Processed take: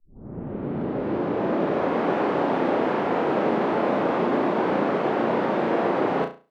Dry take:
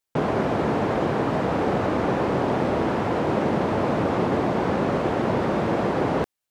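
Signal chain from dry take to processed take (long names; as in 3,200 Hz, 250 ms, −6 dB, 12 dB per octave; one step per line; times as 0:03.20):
turntable start at the beginning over 2.12 s
three-way crossover with the lows and the highs turned down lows −23 dB, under 180 Hz, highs −14 dB, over 4,100 Hz
flutter between parallel walls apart 5.9 metres, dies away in 0.32 s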